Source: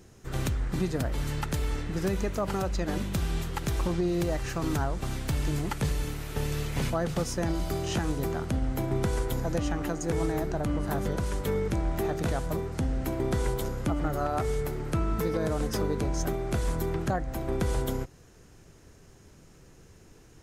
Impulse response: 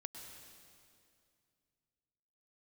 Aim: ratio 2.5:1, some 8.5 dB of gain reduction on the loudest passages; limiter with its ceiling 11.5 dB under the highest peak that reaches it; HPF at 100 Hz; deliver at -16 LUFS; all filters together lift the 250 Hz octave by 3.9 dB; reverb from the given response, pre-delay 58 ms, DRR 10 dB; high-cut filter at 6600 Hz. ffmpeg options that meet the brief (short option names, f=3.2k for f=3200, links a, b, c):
-filter_complex "[0:a]highpass=100,lowpass=6.6k,equalizer=f=250:t=o:g=6,acompressor=threshold=-36dB:ratio=2.5,alimiter=level_in=9.5dB:limit=-24dB:level=0:latency=1,volume=-9.5dB,asplit=2[a][b];[1:a]atrim=start_sample=2205,adelay=58[c];[b][c]afir=irnorm=-1:irlink=0,volume=-6.5dB[d];[a][d]amix=inputs=2:normalize=0,volume=25.5dB"